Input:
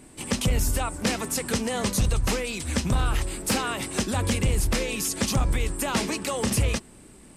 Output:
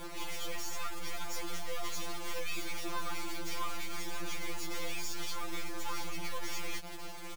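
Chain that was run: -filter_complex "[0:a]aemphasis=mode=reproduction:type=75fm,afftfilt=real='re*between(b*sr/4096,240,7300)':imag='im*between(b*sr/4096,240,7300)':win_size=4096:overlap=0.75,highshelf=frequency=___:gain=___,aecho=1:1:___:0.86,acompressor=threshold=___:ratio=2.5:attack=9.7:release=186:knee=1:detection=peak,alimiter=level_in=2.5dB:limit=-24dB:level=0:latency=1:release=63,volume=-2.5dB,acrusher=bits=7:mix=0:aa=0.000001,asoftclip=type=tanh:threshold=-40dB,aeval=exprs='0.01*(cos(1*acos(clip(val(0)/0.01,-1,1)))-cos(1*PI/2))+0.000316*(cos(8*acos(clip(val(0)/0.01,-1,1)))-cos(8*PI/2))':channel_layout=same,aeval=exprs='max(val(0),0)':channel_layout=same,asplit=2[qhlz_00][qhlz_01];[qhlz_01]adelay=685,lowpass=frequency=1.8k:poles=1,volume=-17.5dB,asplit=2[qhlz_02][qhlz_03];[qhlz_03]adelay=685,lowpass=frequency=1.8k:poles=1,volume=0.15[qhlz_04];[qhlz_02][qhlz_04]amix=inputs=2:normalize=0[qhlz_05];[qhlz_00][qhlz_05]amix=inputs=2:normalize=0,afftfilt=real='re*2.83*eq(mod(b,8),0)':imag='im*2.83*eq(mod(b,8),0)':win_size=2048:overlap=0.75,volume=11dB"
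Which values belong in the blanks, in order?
2.8k, 6.5, 6.7, -38dB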